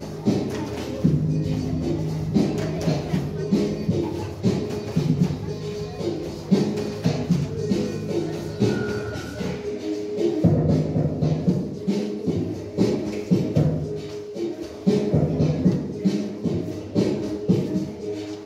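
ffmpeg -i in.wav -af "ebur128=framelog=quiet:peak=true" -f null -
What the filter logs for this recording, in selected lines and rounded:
Integrated loudness:
  I:         -24.4 LUFS
  Threshold: -34.4 LUFS
Loudness range:
  LRA:         2.0 LU
  Threshold: -44.3 LUFS
  LRA low:   -25.3 LUFS
  LRA high:  -23.3 LUFS
True peak:
  Peak:       -6.2 dBFS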